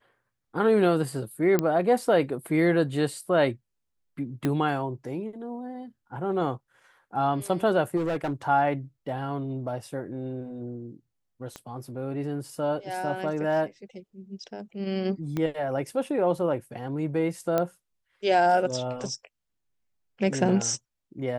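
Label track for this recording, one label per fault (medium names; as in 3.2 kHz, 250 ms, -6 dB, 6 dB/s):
1.590000	1.590000	pop -10 dBFS
4.450000	4.450000	pop -14 dBFS
7.960000	8.330000	clipped -23.5 dBFS
11.560000	11.560000	pop -23 dBFS
15.370000	15.370000	pop -17 dBFS
17.580000	17.580000	pop -12 dBFS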